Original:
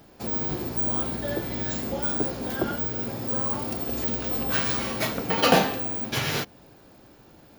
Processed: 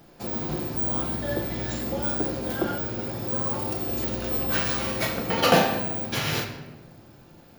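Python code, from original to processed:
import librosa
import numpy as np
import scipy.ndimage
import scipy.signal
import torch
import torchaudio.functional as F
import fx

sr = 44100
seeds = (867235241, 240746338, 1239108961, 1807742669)

y = fx.room_shoebox(x, sr, seeds[0], volume_m3=570.0, walls='mixed', distance_m=0.82)
y = F.gain(torch.from_numpy(y), -1.0).numpy()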